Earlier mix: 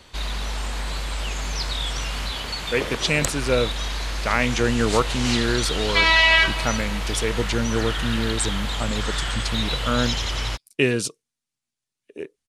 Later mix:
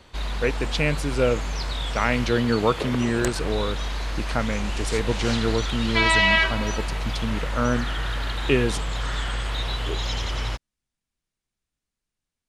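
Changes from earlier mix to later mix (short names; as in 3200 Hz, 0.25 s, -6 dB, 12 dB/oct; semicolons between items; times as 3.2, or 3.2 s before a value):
speech: entry -2.30 s; master: add high shelf 2600 Hz -7.5 dB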